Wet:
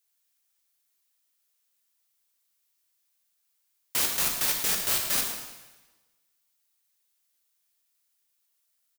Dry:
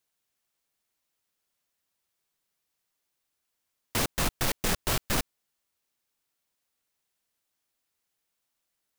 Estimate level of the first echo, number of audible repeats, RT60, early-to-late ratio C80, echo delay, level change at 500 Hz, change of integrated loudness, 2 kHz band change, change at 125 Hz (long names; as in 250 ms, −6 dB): −10.5 dB, 1, 1.2 s, 5.5 dB, 110 ms, −6.0 dB, +4.0 dB, 0.0 dB, −13.0 dB